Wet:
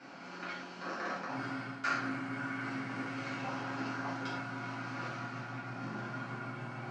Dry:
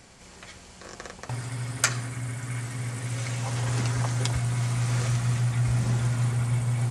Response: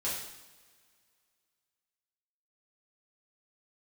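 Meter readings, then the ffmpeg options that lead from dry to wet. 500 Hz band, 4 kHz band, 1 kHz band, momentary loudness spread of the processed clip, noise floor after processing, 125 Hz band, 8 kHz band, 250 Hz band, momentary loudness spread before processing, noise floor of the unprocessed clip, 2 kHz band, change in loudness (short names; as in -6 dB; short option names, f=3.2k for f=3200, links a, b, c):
-4.5 dB, -11.0 dB, -0.5 dB, 7 LU, -47 dBFS, -21.0 dB, -24.5 dB, -3.5 dB, 16 LU, -49 dBFS, -2.0 dB, -11.5 dB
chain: -filter_complex "[0:a]areverse,acompressor=threshold=-34dB:ratio=6,areverse,highpass=f=180:w=0.5412,highpass=f=180:w=1.3066,equalizer=f=300:t=q:w=4:g=7,equalizer=f=470:t=q:w=4:g=-9,equalizer=f=690:t=q:w=4:g=3,equalizer=f=1.4k:t=q:w=4:g=9,equalizer=f=1.9k:t=q:w=4:g=-4,equalizer=f=3.5k:t=q:w=4:g=-9,lowpass=f=4.2k:w=0.5412,lowpass=f=4.2k:w=1.3066[a];[1:a]atrim=start_sample=2205,afade=t=out:st=0.17:d=0.01,atrim=end_sample=7938[b];[a][b]afir=irnorm=-1:irlink=0"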